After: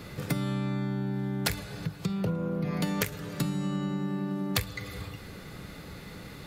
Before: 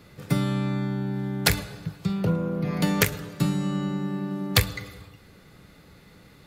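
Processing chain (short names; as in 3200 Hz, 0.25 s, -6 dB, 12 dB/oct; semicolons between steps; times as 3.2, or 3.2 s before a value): compressor 3:1, threshold -40 dBFS, peak gain reduction 19 dB; gain +8 dB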